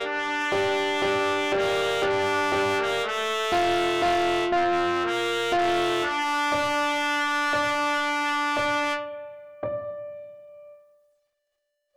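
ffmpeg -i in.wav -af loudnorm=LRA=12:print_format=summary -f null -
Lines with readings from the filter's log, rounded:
Input Integrated:    -24.4 LUFS
Input True Peak:     -19.4 dBTP
Input LRA:            15.1 LU
Input Threshold:     -35.7 LUFS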